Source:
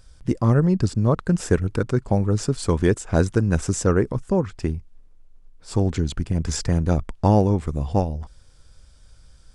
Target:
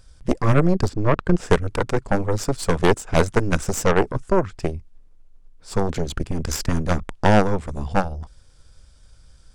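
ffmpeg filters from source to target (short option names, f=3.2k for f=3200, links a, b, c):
-filter_complex "[0:a]aeval=exprs='0.596*(cos(1*acos(clip(val(0)/0.596,-1,1)))-cos(1*PI/2))+0.211*(cos(6*acos(clip(val(0)/0.596,-1,1)))-cos(6*PI/2))+0.0335*(cos(8*acos(clip(val(0)/0.596,-1,1)))-cos(8*PI/2))':c=same,asettb=1/sr,asplit=3[a][b][c];[a]atrim=end=0.894[d];[b]atrim=start=0.89:end=1.5,asetpts=PTS-STARTPTS,afade=t=in:d=0.004:c=qsin,afade=t=out:st=0.606:d=0.004:c=qsin,aemphasis=mode=reproduction:type=50fm[e];[c]atrim=start=1.496[f];[d][e]acrossfade=d=0.004:c1=hsin:c2=qsin[g];[g][f]acrossfade=d=0.004:c1=qsin:c2=hsin"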